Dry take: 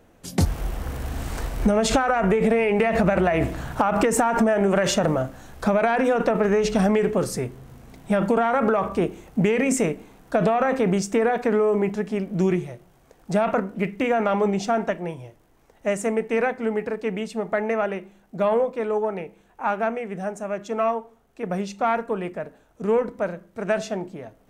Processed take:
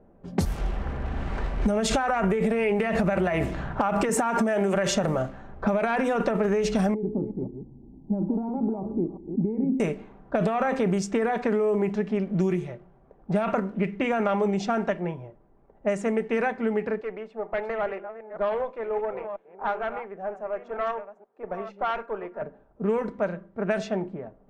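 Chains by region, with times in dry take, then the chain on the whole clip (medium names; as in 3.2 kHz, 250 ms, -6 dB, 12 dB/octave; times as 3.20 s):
4.09–4.75 s: high-pass 110 Hz 6 dB/octave + three bands compressed up and down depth 40%
6.94–9.80 s: chunks repeated in reverse 186 ms, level -9 dB + cascade formant filter u + bass shelf 270 Hz +10 dB
17.01–22.42 s: chunks repeated in reverse 470 ms, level -11.5 dB + high-pass 460 Hz + valve stage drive 18 dB, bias 0.5
whole clip: level-controlled noise filter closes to 790 Hz, open at -16.5 dBFS; comb 5.1 ms, depth 33%; compression 4:1, threshold -21 dBFS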